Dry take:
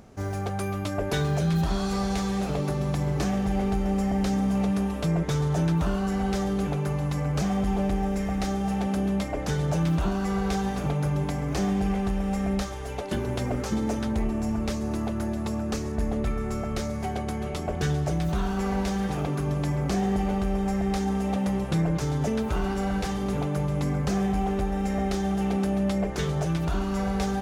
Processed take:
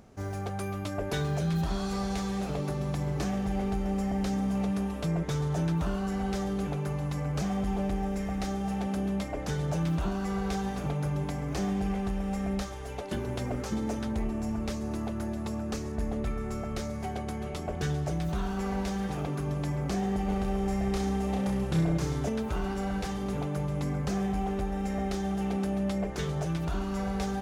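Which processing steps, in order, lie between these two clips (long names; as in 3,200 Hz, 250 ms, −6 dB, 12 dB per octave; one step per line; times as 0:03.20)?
0:20.25–0:22.29: reverse bouncing-ball delay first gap 30 ms, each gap 1.1×, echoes 5
level −4.5 dB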